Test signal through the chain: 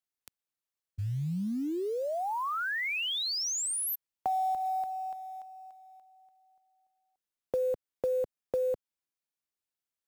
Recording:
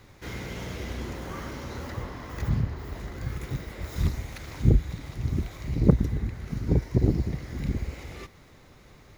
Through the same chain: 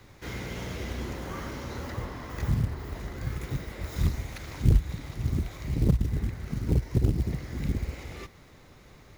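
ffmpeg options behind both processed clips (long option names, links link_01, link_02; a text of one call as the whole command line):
ffmpeg -i in.wav -filter_complex "[0:a]acrossover=split=140[link_01][link_02];[link_02]acompressor=threshold=-28dB:ratio=5[link_03];[link_01][link_03]amix=inputs=2:normalize=0,acrusher=bits=7:mode=log:mix=0:aa=0.000001" out.wav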